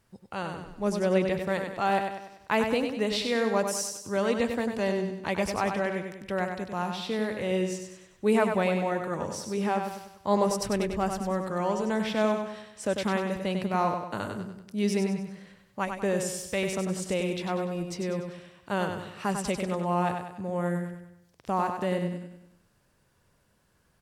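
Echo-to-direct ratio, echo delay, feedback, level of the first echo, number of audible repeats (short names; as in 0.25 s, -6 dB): -5.0 dB, 97 ms, 46%, -6.0 dB, 5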